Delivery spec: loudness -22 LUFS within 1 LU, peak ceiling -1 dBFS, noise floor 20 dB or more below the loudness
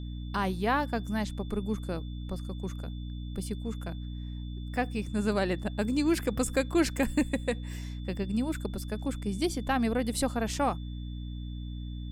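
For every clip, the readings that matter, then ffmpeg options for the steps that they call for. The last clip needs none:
hum 60 Hz; harmonics up to 300 Hz; hum level -35 dBFS; steady tone 3500 Hz; tone level -54 dBFS; loudness -32.0 LUFS; peak -12.5 dBFS; loudness target -22.0 LUFS
-> -af "bandreject=f=60:t=h:w=6,bandreject=f=120:t=h:w=6,bandreject=f=180:t=h:w=6,bandreject=f=240:t=h:w=6,bandreject=f=300:t=h:w=6"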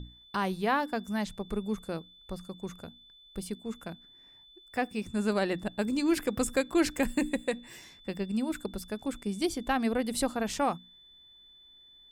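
hum none; steady tone 3500 Hz; tone level -54 dBFS
-> -af "bandreject=f=3.5k:w=30"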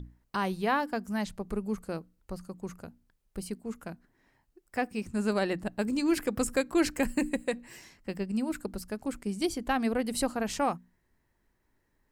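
steady tone none; loudness -32.0 LUFS; peak -13.0 dBFS; loudness target -22.0 LUFS
-> -af "volume=10dB"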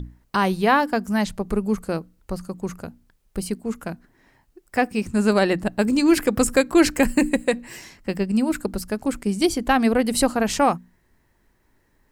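loudness -22.0 LUFS; peak -3.0 dBFS; noise floor -64 dBFS

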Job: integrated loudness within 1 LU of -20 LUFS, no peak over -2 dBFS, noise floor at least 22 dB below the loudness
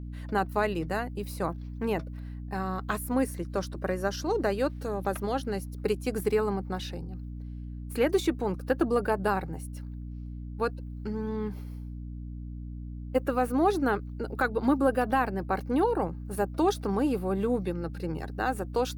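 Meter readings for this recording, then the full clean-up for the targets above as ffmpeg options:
hum 60 Hz; harmonics up to 300 Hz; hum level -36 dBFS; loudness -29.5 LUFS; peak -12.5 dBFS; loudness target -20.0 LUFS
-> -af "bandreject=f=60:t=h:w=4,bandreject=f=120:t=h:w=4,bandreject=f=180:t=h:w=4,bandreject=f=240:t=h:w=4,bandreject=f=300:t=h:w=4"
-af "volume=9.5dB"

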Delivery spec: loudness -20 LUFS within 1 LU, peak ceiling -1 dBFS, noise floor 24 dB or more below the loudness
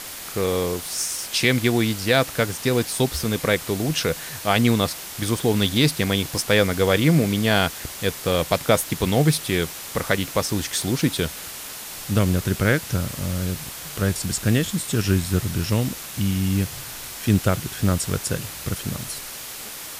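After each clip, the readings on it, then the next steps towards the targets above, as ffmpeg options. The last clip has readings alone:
noise floor -36 dBFS; noise floor target -47 dBFS; loudness -22.5 LUFS; peak -4.5 dBFS; loudness target -20.0 LUFS
-> -af "afftdn=nr=11:nf=-36"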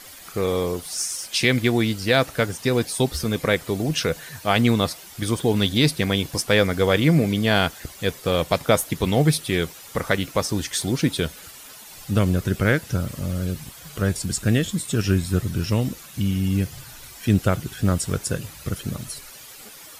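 noise floor -43 dBFS; noise floor target -47 dBFS
-> -af "afftdn=nr=6:nf=-43"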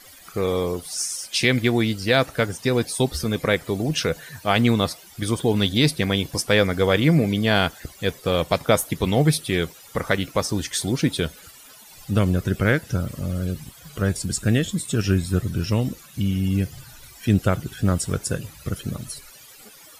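noise floor -47 dBFS; loudness -22.5 LUFS; peak -4.5 dBFS; loudness target -20.0 LUFS
-> -af "volume=2.5dB"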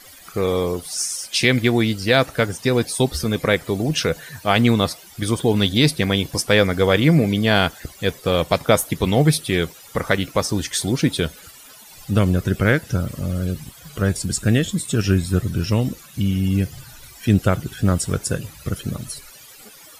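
loudness -20.0 LUFS; peak -2.0 dBFS; noise floor -44 dBFS

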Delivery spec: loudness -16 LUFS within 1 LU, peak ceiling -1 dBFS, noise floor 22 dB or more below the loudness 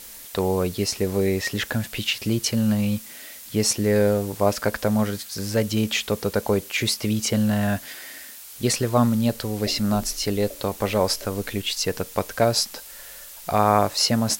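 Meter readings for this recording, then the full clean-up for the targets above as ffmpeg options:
noise floor -41 dBFS; noise floor target -46 dBFS; loudness -23.5 LUFS; peak -4.0 dBFS; loudness target -16.0 LUFS
-> -af "afftdn=nr=6:nf=-41"
-af "volume=7.5dB,alimiter=limit=-1dB:level=0:latency=1"

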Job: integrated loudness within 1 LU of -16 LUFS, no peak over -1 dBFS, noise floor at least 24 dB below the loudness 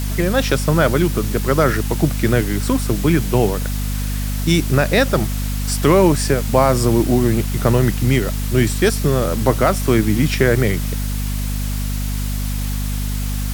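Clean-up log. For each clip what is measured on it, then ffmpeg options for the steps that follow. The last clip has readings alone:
hum 50 Hz; harmonics up to 250 Hz; hum level -19 dBFS; noise floor -22 dBFS; noise floor target -42 dBFS; loudness -18.0 LUFS; peak -1.0 dBFS; loudness target -16.0 LUFS
-> -af "bandreject=f=50:t=h:w=6,bandreject=f=100:t=h:w=6,bandreject=f=150:t=h:w=6,bandreject=f=200:t=h:w=6,bandreject=f=250:t=h:w=6"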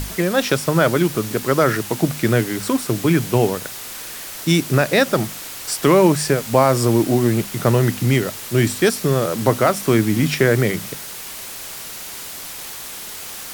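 hum none; noise floor -33 dBFS; noise floor target -42 dBFS
-> -af "afftdn=nr=9:nf=-33"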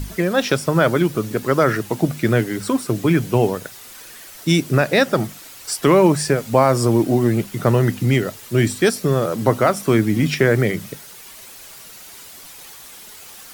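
noise floor -40 dBFS; noise floor target -43 dBFS
-> -af "afftdn=nr=6:nf=-40"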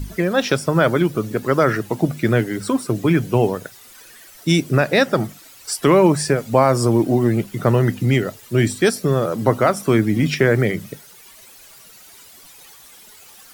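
noise floor -45 dBFS; loudness -18.5 LUFS; peak -2.5 dBFS; loudness target -16.0 LUFS
-> -af "volume=2.5dB,alimiter=limit=-1dB:level=0:latency=1"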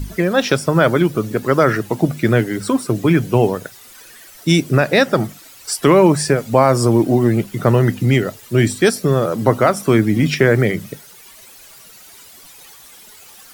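loudness -16.0 LUFS; peak -1.0 dBFS; noise floor -43 dBFS

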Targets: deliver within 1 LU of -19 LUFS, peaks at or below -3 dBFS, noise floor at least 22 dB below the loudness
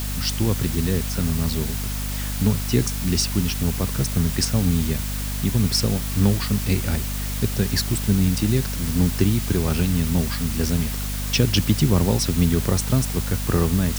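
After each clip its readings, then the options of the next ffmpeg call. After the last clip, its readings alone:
hum 50 Hz; harmonics up to 250 Hz; hum level -25 dBFS; noise floor -27 dBFS; noise floor target -44 dBFS; loudness -22.0 LUFS; peak -3.5 dBFS; loudness target -19.0 LUFS
-> -af "bandreject=f=50:t=h:w=4,bandreject=f=100:t=h:w=4,bandreject=f=150:t=h:w=4,bandreject=f=200:t=h:w=4,bandreject=f=250:t=h:w=4"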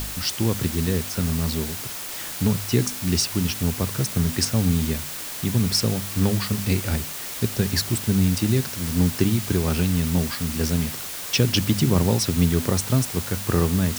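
hum none; noise floor -33 dBFS; noise floor target -45 dBFS
-> -af "afftdn=nr=12:nf=-33"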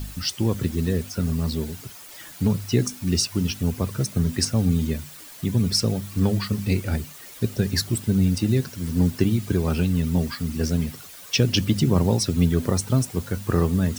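noise floor -43 dBFS; noise floor target -46 dBFS
-> -af "afftdn=nr=6:nf=-43"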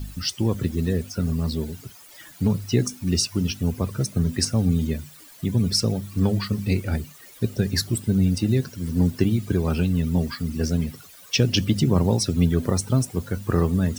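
noise floor -47 dBFS; loudness -23.5 LUFS; peak -5.5 dBFS; loudness target -19.0 LUFS
-> -af "volume=4.5dB,alimiter=limit=-3dB:level=0:latency=1"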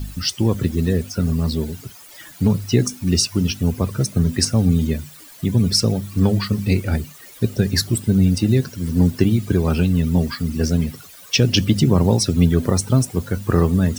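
loudness -19.0 LUFS; peak -3.0 dBFS; noise floor -43 dBFS

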